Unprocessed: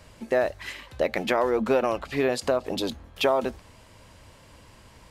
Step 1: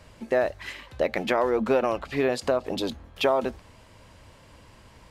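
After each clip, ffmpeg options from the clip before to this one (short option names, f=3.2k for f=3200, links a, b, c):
-af "highshelf=f=5.8k:g=-5"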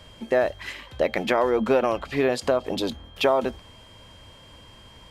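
-af "aeval=exprs='val(0)+0.00224*sin(2*PI*3200*n/s)':c=same,volume=2dB"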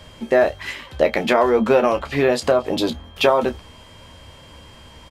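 -af "aecho=1:1:13|29:0.398|0.251,volume=4.5dB"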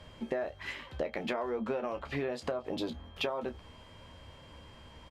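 -af "aemphasis=mode=reproduction:type=cd,acompressor=threshold=-23dB:ratio=6,volume=-8.5dB"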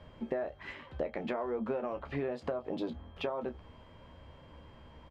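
-af "lowpass=f=1.4k:p=1,bandreject=f=50:t=h:w=6,bandreject=f=100:t=h:w=6"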